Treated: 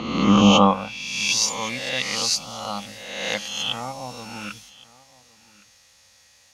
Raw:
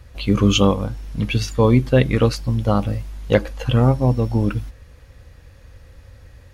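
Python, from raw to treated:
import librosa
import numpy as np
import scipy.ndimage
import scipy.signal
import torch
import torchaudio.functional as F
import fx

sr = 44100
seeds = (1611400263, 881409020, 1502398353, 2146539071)

p1 = fx.spec_swells(x, sr, rise_s=1.18)
p2 = fx.graphic_eq_31(p1, sr, hz=(200, 400, 800, 1600, 6300), db=(9, -12, 6, -6, 5))
p3 = p2 + fx.echo_single(p2, sr, ms=1115, db=-22.5, dry=0)
p4 = fx.filter_sweep_bandpass(p3, sr, from_hz=840.0, to_hz=6000.0, start_s=0.52, end_s=1.1, q=0.87)
y = p4 * 10.0 ** (5.0 / 20.0)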